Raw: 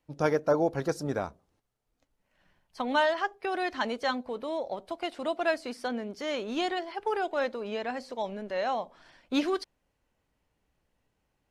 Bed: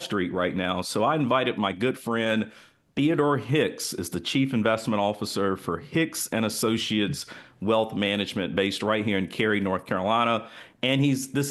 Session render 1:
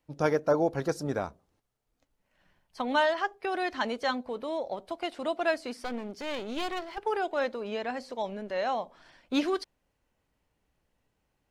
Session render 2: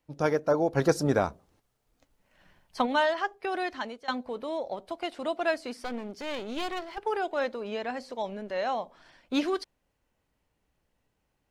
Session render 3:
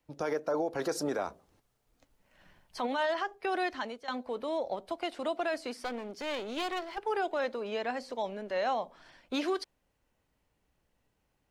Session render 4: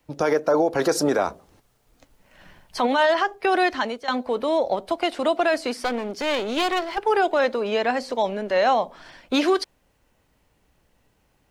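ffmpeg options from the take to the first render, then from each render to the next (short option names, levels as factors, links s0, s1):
-filter_complex "[0:a]asettb=1/sr,asplit=3[s0][s1][s2];[s0]atrim=end=5.814[s3];[s1]atrim=start=5.81:end=6.98,asetpts=PTS-STARTPTS,afade=t=in:d=0.004:c=qsin,afade=t=out:st=1.166:d=0.004:c=qsin,aeval=exprs='clip(val(0),-1,0.00841)':c=same[s4];[s2]atrim=start=6.976[s5];[s3][s4]acrossfade=d=0.004:c1=hsin:c2=qsin[s6];[s6][s5]acrossfade=d=0.004:c1=qsin:c2=hsin"
-filter_complex "[0:a]asplit=3[s0][s1][s2];[s0]afade=t=out:st=0.75:d=0.02[s3];[s1]acontrast=69,afade=t=in:st=0.75:d=0.02,afade=t=out:st=2.85:d=0.02[s4];[s2]afade=t=in:st=2.85:d=0.02[s5];[s3][s4][s5]amix=inputs=3:normalize=0,asplit=2[s6][s7];[s6]atrim=end=4.08,asetpts=PTS-STARTPTS,afade=t=out:st=3.6:d=0.48:silence=0.112202[s8];[s7]atrim=start=4.08,asetpts=PTS-STARTPTS,afade=t=in:d=0.004:c=hsin:silence=0.112202[s9];[s8][s9]concat=n=2:v=0:a=1"
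-filter_complex "[0:a]acrossover=split=260|850[s0][s1][s2];[s0]acompressor=threshold=0.00355:ratio=6[s3];[s3][s1][s2]amix=inputs=3:normalize=0,alimiter=limit=0.0708:level=0:latency=1:release=46"
-af "volume=3.76"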